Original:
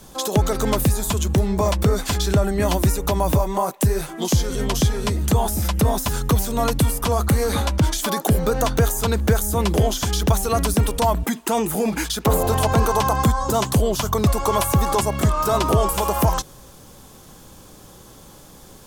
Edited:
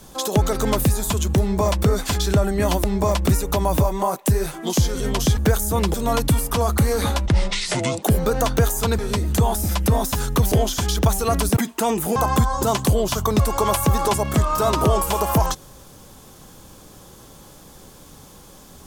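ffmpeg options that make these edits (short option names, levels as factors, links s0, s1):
-filter_complex "[0:a]asplit=11[s0][s1][s2][s3][s4][s5][s6][s7][s8][s9][s10];[s0]atrim=end=2.842[s11];[s1]atrim=start=1.408:end=1.862[s12];[s2]atrim=start=2.838:end=4.922[s13];[s3]atrim=start=9.188:end=9.762[s14];[s4]atrim=start=6.448:end=7.774[s15];[s5]atrim=start=7.77:end=8.23,asetpts=PTS-STARTPTS,asetrate=26460,aresample=44100[s16];[s6]atrim=start=8.226:end=9.192[s17];[s7]atrim=start=4.918:end=6.452[s18];[s8]atrim=start=9.758:end=10.812[s19];[s9]atrim=start=11.248:end=11.842[s20];[s10]atrim=start=13.028[s21];[s11][s12]acrossfade=d=0.004:c1=hsin:c2=hsin[s22];[s22][s13]acrossfade=d=0.004:c1=hsin:c2=hsin[s23];[s23][s14]acrossfade=d=0.004:c1=hsin:c2=hsin[s24];[s24][s15]acrossfade=d=0.004:c1=hsin:c2=hsin[s25];[s25][s16]acrossfade=d=0.004:c1=hsin:c2=hsin[s26];[s26][s17]acrossfade=d=0.004:c1=hsin:c2=hsin[s27];[s27][s18]acrossfade=d=0.004:c1=hsin:c2=hsin[s28];[s28][s19]acrossfade=d=0.004:c1=hsin:c2=hsin[s29];[s29][s20]acrossfade=d=0.004:c1=hsin:c2=hsin[s30];[s30][s21]acrossfade=d=0.004:c1=hsin:c2=hsin"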